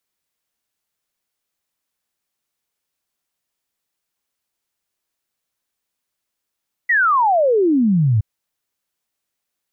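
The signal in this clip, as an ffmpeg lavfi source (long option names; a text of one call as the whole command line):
ffmpeg -f lavfi -i "aevalsrc='0.251*clip(min(t,1.32-t)/0.01,0,1)*sin(2*PI*2000*1.32/log(100/2000)*(exp(log(100/2000)*t/1.32)-1))':duration=1.32:sample_rate=44100" out.wav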